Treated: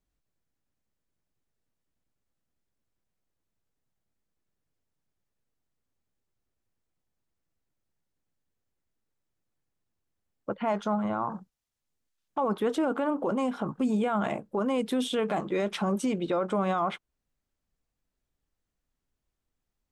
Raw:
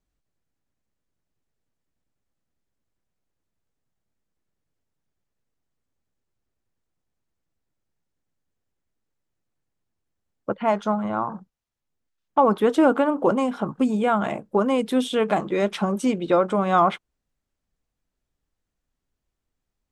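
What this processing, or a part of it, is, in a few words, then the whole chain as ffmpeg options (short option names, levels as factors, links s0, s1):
stacked limiters: -filter_complex "[0:a]asettb=1/sr,asplit=3[s0][s1][s2];[s0]atrim=end=11.304[s3];[s1]atrim=start=11.3:end=12.48,asetpts=PTS-STARTPTS,afade=t=in:d=0.004:c=qsin,afade=t=out:st=1.176:d=0.004:c=qsin,equalizer=f=8600:w=0.35:g=5.5[s4];[s2]atrim=start=12.476[s5];[s3][s4]acrossfade=d=0.004:c1=hsin:c2=qsin[s6];[s6][s5]acrossfade=d=0.004:c1=qsin:c2=hsin,alimiter=limit=0.282:level=0:latency=1:release=466,alimiter=limit=0.141:level=0:latency=1:release=21,volume=0.75"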